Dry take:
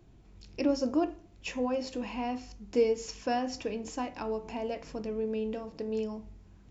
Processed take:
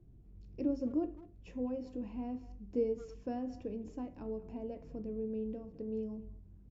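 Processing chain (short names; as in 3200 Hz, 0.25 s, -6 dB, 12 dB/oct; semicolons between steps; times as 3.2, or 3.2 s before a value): EQ curve 120 Hz 0 dB, 450 Hz -7 dB, 870 Hz -17 dB, 4500 Hz -24 dB; speakerphone echo 0.21 s, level -17 dB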